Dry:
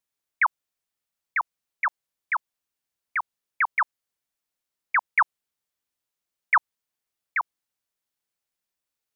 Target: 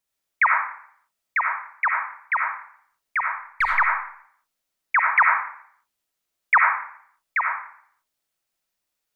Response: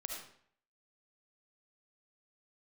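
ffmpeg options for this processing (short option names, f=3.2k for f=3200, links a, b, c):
-filter_complex "[0:a]asplit=3[a][b][c];[a]afade=t=out:st=3.2:d=0.02[d];[b]aeval=exprs='if(lt(val(0),0),0.708*val(0),val(0))':c=same,afade=t=in:st=3.2:d=0.02,afade=t=out:st=3.69:d=0.02[e];[c]afade=t=in:st=3.69:d=0.02[f];[d][e][f]amix=inputs=3:normalize=0[g];[1:a]atrim=start_sample=2205[h];[g][h]afir=irnorm=-1:irlink=0,volume=6.5dB"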